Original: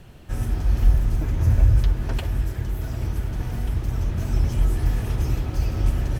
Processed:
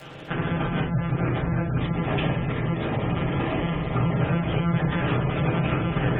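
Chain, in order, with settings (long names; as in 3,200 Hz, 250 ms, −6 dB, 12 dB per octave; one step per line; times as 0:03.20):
low-shelf EQ 290 Hz −10.5 dB
mains-hum notches 60/120/180/240/300 Hz
brickwall limiter −27 dBFS, peak gain reduction 11 dB
one-pitch LPC vocoder at 8 kHz 170 Hz
high-pass filter 110 Hz 12 dB per octave
convolution reverb RT60 0.45 s, pre-delay 5 ms, DRR −2.5 dB
surface crackle 470 per second −46 dBFS
gate on every frequency bin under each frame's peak −30 dB strong
0:01.78–0:04.20: notch filter 1,500 Hz, Q 5.9
level +9 dB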